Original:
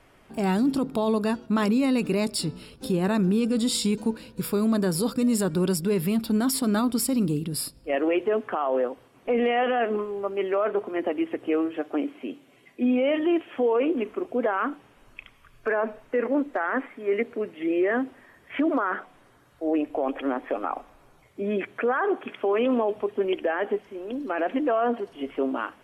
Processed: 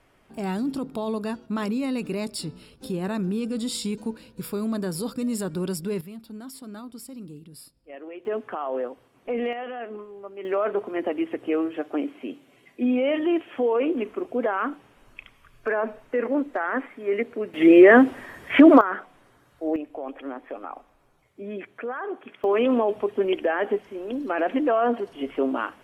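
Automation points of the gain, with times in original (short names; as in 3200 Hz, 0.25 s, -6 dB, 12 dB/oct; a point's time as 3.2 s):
-4.5 dB
from 6.01 s -16 dB
from 8.25 s -4 dB
from 9.53 s -10.5 dB
from 10.45 s 0 dB
from 17.54 s +12 dB
from 18.81 s -0.5 dB
from 19.76 s -7.5 dB
from 22.44 s +2 dB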